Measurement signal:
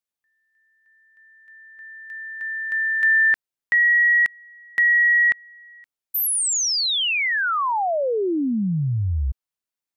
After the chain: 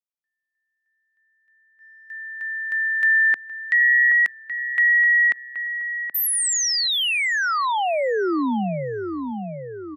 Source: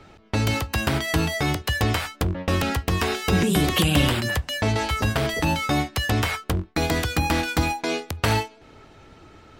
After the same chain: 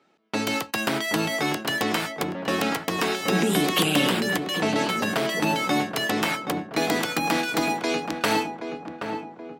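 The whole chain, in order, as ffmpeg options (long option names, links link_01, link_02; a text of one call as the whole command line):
ffmpeg -i in.wav -filter_complex "[0:a]agate=range=-14dB:threshold=-41dB:ratio=16:release=64:detection=peak,highpass=frequency=190:width=0.5412,highpass=frequency=190:width=1.3066,asplit=2[link_01][link_02];[link_02]adelay=776,lowpass=frequency=1300:poles=1,volume=-6dB,asplit=2[link_03][link_04];[link_04]adelay=776,lowpass=frequency=1300:poles=1,volume=0.53,asplit=2[link_05][link_06];[link_06]adelay=776,lowpass=frequency=1300:poles=1,volume=0.53,asplit=2[link_07][link_08];[link_08]adelay=776,lowpass=frequency=1300:poles=1,volume=0.53,asplit=2[link_09][link_10];[link_10]adelay=776,lowpass=frequency=1300:poles=1,volume=0.53,asplit=2[link_11][link_12];[link_12]adelay=776,lowpass=frequency=1300:poles=1,volume=0.53,asplit=2[link_13][link_14];[link_14]adelay=776,lowpass=frequency=1300:poles=1,volume=0.53[link_15];[link_01][link_03][link_05][link_07][link_09][link_11][link_13][link_15]amix=inputs=8:normalize=0" out.wav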